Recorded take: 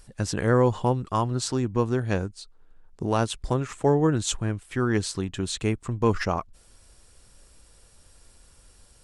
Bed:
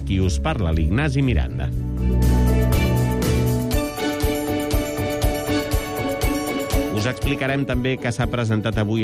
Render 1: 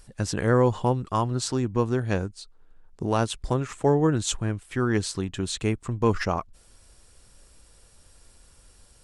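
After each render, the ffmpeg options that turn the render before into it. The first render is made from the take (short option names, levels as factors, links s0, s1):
-af anull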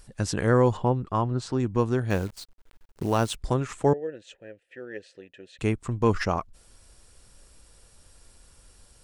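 -filter_complex "[0:a]asettb=1/sr,asplit=3[s0][s1][s2];[s0]atrim=end=0.774[s3];[s1]atrim=start=0.77:end=1.6,asetpts=PTS-STARTPTS,afade=t=in:d=0.004:c=qsin,afade=t=out:st=0.826:d=0.004:c=qsin,lowpass=f=1700:p=1[s4];[s2]atrim=start=1.596[s5];[s3][s4]acrossfade=d=0.004:c1=hsin:c2=qsin[s6];[s6][s5]acrossfade=d=0.004:c1=qsin:c2=hsin,asettb=1/sr,asplit=3[s7][s8][s9];[s7]atrim=end=2.104[s10];[s8]atrim=start=2.1:end=3.35,asetpts=PTS-STARTPTS,afade=t=in:d=0.004:c=qsin,afade=t=out:st=1.246:d=0.004:c=qsin,acrusher=bits=8:dc=4:mix=0:aa=0.000001[s11];[s9]atrim=start=3.346[s12];[s10][s11]acrossfade=d=0.004:c1=hsin:c2=qsin[s13];[s13][s12]acrossfade=d=0.004:c1=qsin:c2=hsin,asettb=1/sr,asplit=3[s14][s15][s16];[s14]atrim=end=3.934[s17];[s15]atrim=start=3.93:end=5.59,asetpts=PTS-STARTPTS,afade=t=in:d=0.004:c=qsin,afade=t=out:st=1.656:d=0.004:c=qsin,asplit=3[s18][s19][s20];[s18]bandpass=f=530:t=q:w=8,volume=1[s21];[s19]bandpass=f=1840:t=q:w=8,volume=0.501[s22];[s20]bandpass=f=2480:t=q:w=8,volume=0.355[s23];[s21][s22][s23]amix=inputs=3:normalize=0[s24];[s16]atrim=start=5.586[s25];[s17][s24]acrossfade=d=0.004:c1=hsin:c2=qsin[s26];[s26][s25]acrossfade=d=0.004:c1=qsin:c2=hsin"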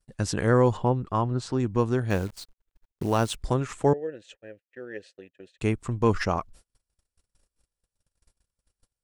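-af "agate=range=0.0178:threshold=0.00398:ratio=16:detection=peak"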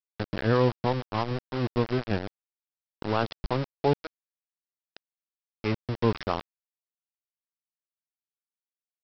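-filter_complex "[0:a]acrossover=split=440[s0][s1];[s0]aeval=exprs='val(0)*(1-0.5/2+0.5/2*cos(2*PI*6.1*n/s))':c=same[s2];[s1]aeval=exprs='val(0)*(1-0.5/2-0.5/2*cos(2*PI*6.1*n/s))':c=same[s3];[s2][s3]amix=inputs=2:normalize=0,aresample=11025,aeval=exprs='val(0)*gte(abs(val(0)),0.0422)':c=same,aresample=44100"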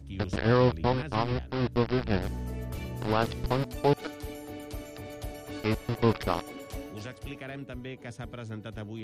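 -filter_complex "[1:a]volume=0.119[s0];[0:a][s0]amix=inputs=2:normalize=0"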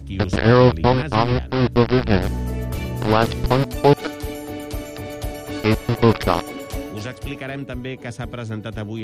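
-af "volume=3.35,alimiter=limit=0.891:level=0:latency=1"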